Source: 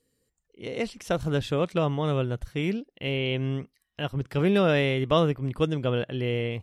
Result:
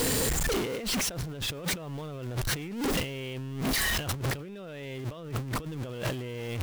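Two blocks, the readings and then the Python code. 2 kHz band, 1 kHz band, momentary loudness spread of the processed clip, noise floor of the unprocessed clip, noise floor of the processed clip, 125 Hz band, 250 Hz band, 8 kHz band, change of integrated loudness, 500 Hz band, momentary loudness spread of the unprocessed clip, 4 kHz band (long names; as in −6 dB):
−0.5 dB, −5.0 dB, 11 LU, −79 dBFS, −41 dBFS, −6.0 dB, −6.0 dB, can't be measured, −4.5 dB, −9.0 dB, 10 LU, +1.5 dB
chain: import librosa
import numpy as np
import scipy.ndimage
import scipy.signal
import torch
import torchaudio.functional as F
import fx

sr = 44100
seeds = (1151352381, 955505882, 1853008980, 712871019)

y = x + 0.5 * 10.0 ** (-28.0 / 20.0) * np.sign(x)
y = fx.over_compress(y, sr, threshold_db=-34.0, ratio=-1.0)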